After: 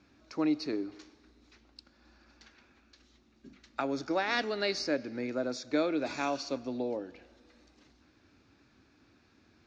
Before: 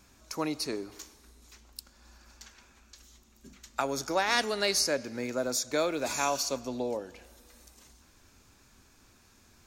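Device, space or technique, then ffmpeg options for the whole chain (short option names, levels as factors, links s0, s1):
guitar cabinet: -af "highpass=76,equalizer=f=300:t=q:w=4:g=9,equalizer=f=1000:t=q:w=4:g=-5,equalizer=f=3200:t=q:w=4:g=-4,lowpass=f=4500:w=0.5412,lowpass=f=4500:w=1.3066,volume=0.75"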